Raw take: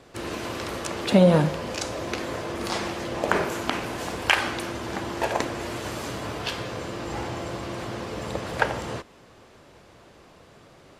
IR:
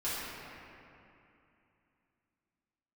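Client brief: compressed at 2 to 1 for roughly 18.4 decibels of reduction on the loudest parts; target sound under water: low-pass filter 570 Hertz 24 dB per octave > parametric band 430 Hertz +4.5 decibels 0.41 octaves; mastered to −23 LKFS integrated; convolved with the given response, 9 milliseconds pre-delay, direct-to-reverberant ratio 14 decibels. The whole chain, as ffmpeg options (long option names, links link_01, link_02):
-filter_complex "[0:a]acompressor=threshold=-47dB:ratio=2,asplit=2[link_01][link_02];[1:a]atrim=start_sample=2205,adelay=9[link_03];[link_02][link_03]afir=irnorm=-1:irlink=0,volume=-21dB[link_04];[link_01][link_04]amix=inputs=2:normalize=0,lowpass=frequency=570:width=0.5412,lowpass=frequency=570:width=1.3066,equalizer=frequency=430:width_type=o:width=0.41:gain=4.5,volume=19.5dB"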